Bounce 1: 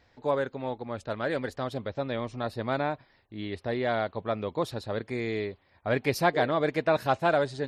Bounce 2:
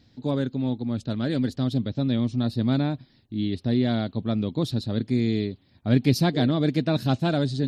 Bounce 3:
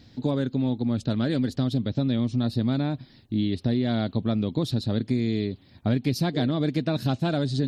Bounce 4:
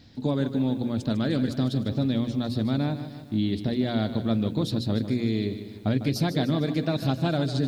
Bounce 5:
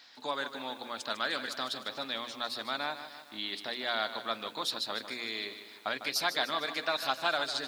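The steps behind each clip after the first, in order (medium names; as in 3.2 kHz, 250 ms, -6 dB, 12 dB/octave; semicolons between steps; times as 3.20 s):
graphic EQ 125/250/500/1000/2000/4000 Hz +9/+12/-6/-8/-7/+8 dB; trim +1.5 dB
compression 5:1, threshold -28 dBFS, peak gain reduction 12.5 dB; trim +6.5 dB
hum notches 60/120/180/240/300/360/420/480/540 Hz; bit-crushed delay 151 ms, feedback 55%, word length 9-bit, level -11 dB
resonant high-pass 1.1 kHz, resonance Q 1.5; trim +3 dB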